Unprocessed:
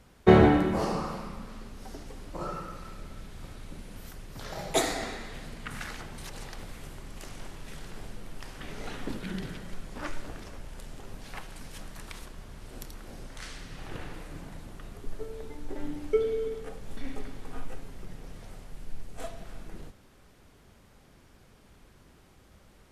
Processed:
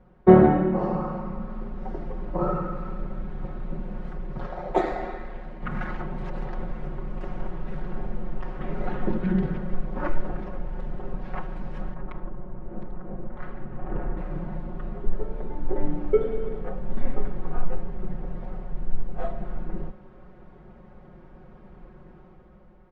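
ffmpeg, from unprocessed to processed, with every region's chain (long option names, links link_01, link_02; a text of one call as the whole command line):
ffmpeg -i in.wav -filter_complex "[0:a]asettb=1/sr,asplit=3[link_01][link_02][link_03];[link_01]atrim=end=4.464[link_04];[link_02]atrim=start=4.46:end=5.62,asetpts=PTS-STARTPTS,afade=type=in:duration=0.004:curve=qsin,afade=type=out:start_time=1.156:duration=0.004:curve=qsin,tremolo=f=76:d=0.857,equalizer=frequency=140:width=0.96:gain=-9[link_05];[link_03]atrim=start=5.616[link_06];[link_04][link_05]acrossfade=duration=0.004:curve1=hsin:curve2=qsin[link_07];[link_07][link_06]acrossfade=duration=0.004:curve1=qsin:curve2=hsin,asettb=1/sr,asplit=3[link_08][link_09][link_10];[link_08]atrim=end=11.944[link_11];[link_09]atrim=start=11.94:end=14.17,asetpts=PTS-STARTPTS,afade=type=in:duration=0.004:curve=qsin,afade=type=out:start_time=2.226:duration=0.004:curve=qsin,adynamicsmooth=sensitivity=5:basefreq=1400,afreqshift=-36[link_12];[link_10]atrim=start=14.166[link_13];[link_11][link_12]acrossfade=duration=0.004:curve1=hsin:curve2=qsin[link_14];[link_14][link_13]acrossfade=duration=0.004:curve1=qsin:curve2=hsin,lowpass=1100,aecho=1:1:5.5:0.97,dynaudnorm=framelen=240:gausssize=7:maxgain=7.5dB" out.wav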